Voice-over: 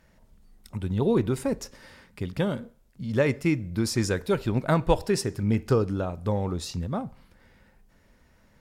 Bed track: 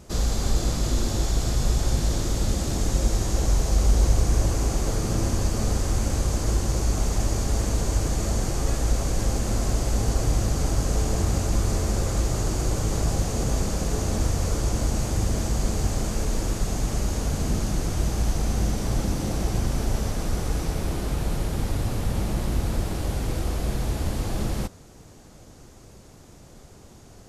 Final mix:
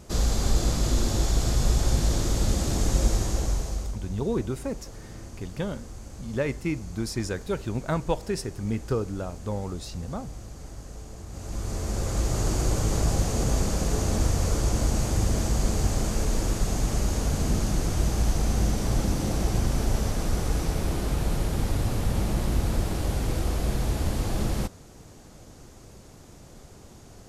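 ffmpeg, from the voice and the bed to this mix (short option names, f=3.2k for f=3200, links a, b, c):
-filter_complex "[0:a]adelay=3200,volume=-4.5dB[a];[1:a]volume=17.5dB,afade=t=out:st=3.06:d=0.91:silence=0.133352,afade=t=in:st=11.29:d=1.21:silence=0.133352[b];[a][b]amix=inputs=2:normalize=0"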